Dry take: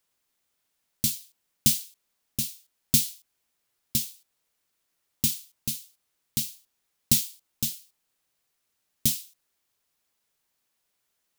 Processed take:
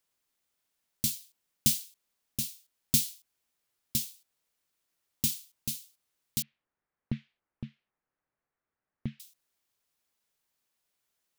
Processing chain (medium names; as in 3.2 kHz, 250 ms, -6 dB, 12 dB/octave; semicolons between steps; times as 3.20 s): 6.42–9.20 s: low-pass 1.9 kHz 24 dB/octave; trim -4 dB